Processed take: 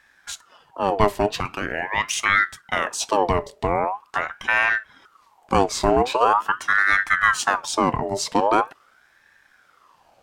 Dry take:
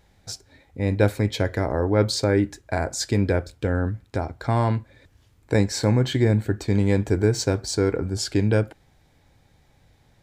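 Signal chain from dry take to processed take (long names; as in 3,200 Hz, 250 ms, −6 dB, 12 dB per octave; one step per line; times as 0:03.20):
0:01.40–0:02.26: high-pass filter 520 Hz 12 dB per octave
ring modulator whose carrier an LFO sweeps 1,100 Hz, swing 55%, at 0.43 Hz
level +4 dB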